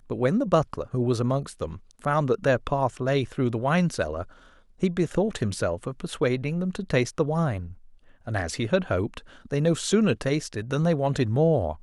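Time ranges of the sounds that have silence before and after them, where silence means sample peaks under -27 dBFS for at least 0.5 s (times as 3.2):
4.83–7.59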